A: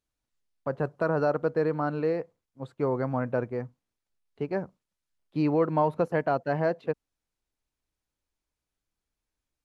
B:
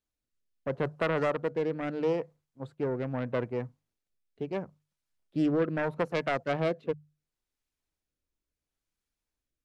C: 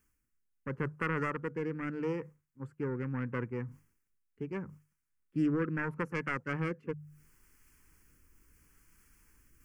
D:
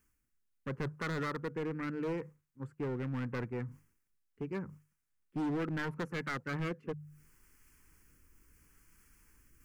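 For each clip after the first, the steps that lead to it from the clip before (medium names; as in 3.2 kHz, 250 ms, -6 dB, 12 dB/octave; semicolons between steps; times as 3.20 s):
self-modulated delay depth 0.29 ms; hum notches 50/100/150 Hz; rotary cabinet horn 0.75 Hz
reverse; upward compressor, threshold -41 dBFS; reverse; static phaser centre 1.6 kHz, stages 4
overload inside the chain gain 31.5 dB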